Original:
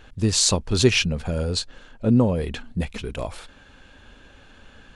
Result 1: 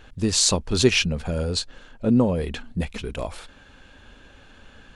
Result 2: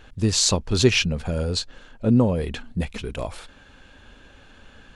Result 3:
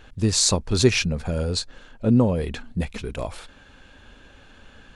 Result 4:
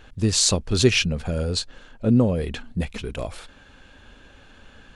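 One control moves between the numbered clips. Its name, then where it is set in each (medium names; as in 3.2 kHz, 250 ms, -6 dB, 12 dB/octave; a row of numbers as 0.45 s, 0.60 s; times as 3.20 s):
dynamic bell, frequency: 110 Hz, 9.1 kHz, 3 kHz, 930 Hz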